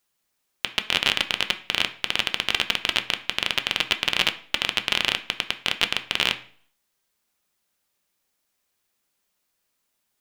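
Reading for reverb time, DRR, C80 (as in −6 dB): 0.50 s, 7.0 dB, 18.5 dB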